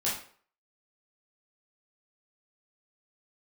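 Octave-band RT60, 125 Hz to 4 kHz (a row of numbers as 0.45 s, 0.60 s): 0.40 s, 0.45 s, 0.50 s, 0.50 s, 0.45 s, 0.40 s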